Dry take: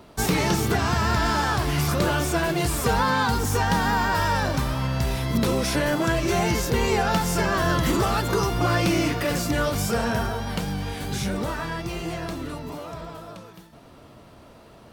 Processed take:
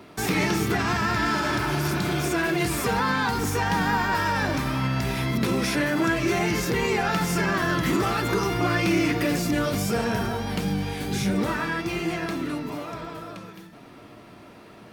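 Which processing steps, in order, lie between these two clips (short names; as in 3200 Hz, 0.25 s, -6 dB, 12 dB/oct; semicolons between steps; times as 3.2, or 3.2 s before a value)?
1.41–2.27 spectral repair 260–3100 Hz both; 9.12–11.39 bell 1600 Hz -4.5 dB 1.8 oct; limiter -18 dBFS, peak gain reduction 6.5 dB; reverb RT60 0.70 s, pre-delay 3 ms, DRR 9 dB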